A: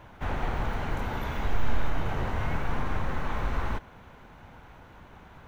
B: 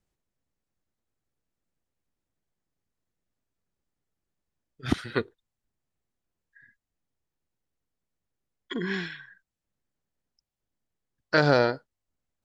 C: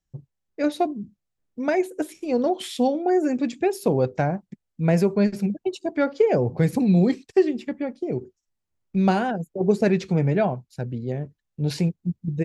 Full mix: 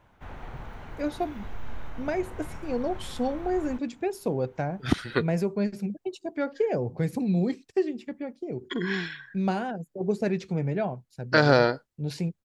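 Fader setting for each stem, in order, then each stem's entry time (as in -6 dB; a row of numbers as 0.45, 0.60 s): -11.0, +1.5, -7.0 dB; 0.00, 0.00, 0.40 s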